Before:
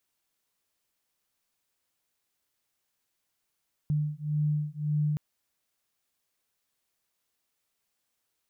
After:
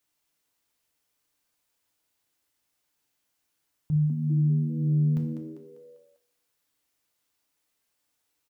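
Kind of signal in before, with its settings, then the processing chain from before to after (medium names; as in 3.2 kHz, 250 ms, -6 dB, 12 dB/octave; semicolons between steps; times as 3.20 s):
beating tones 149 Hz, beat 1.8 Hz, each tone -29 dBFS 1.27 s
on a send: frequency-shifting echo 198 ms, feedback 44%, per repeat +84 Hz, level -9 dB; on the sum: FDN reverb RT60 0.71 s, low-frequency decay 1.2×, high-frequency decay 0.95×, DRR 3 dB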